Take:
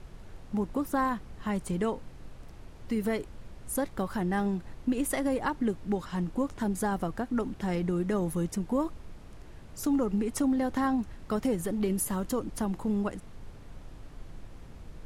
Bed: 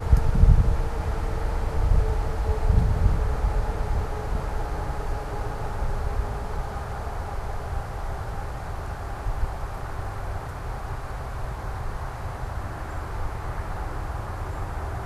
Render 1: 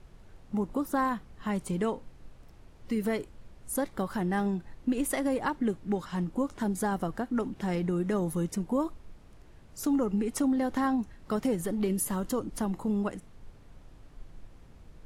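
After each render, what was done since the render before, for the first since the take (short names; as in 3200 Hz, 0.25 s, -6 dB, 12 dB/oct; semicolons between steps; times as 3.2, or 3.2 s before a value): noise print and reduce 6 dB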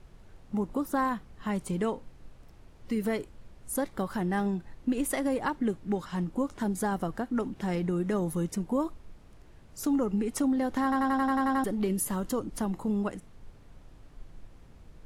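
10.83 stutter in place 0.09 s, 9 plays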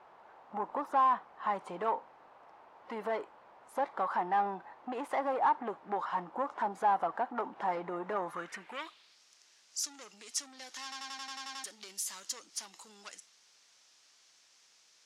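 overdrive pedal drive 21 dB, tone 7100 Hz, clips at -16 dBFS; band-pass sweep 880 Hz -> 5800 Hz, 8.15–9.23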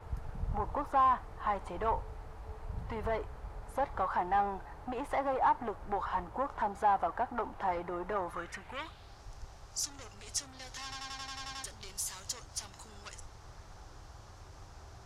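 add bed -21 dB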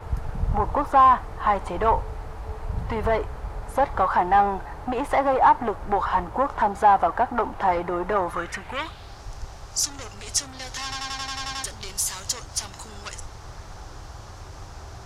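gain +11.5 dB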